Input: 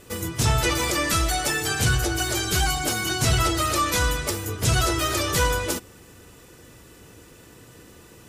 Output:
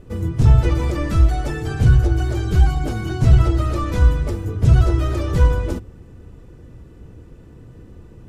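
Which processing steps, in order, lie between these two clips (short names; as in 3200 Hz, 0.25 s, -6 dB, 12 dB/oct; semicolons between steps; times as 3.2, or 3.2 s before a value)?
tilt -4.5 dB/oct; notches 50/100 Hz; gain -4 dB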